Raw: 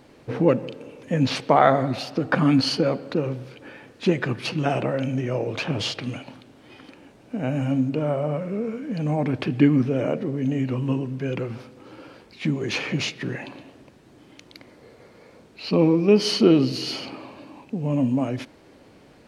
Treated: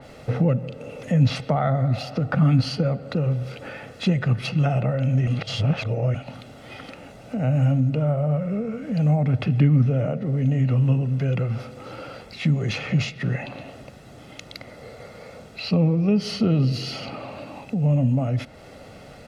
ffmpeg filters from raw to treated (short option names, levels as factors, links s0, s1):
-filter_complex "[0:a]asplit=3[s0][s1][s2];[s0]atrim=end=5.272[s3];[s1]atrim=start=5.268:end=6.142,asetpts=PTS-STARTPTS,areverse[s4];[s2]atrim=start=6.138[s5];[s3][s4]acrossfade=d=0.004:c1=hsin:c2=hsin[s6];[s6][s5]acrossfade=d=0.004:c1=hsin:c2=hsin,aecho=1:1:1.5:0.6,acrossover=split=180[s7][s8];[s8]acompressor=threshold=0.01:ratio=2.5[s9];[s7][s9]amix=inputs=2:normalize=0,adynamicequalizer=threshold=0.00224:dfrequency=3800:dqfactor=0.7:tfrequency=3800:tqfactor=0.7:attack=5:release=100:ratio=0.375:range=2:mode=cutabove:tftype=highshelf,volume=2.37"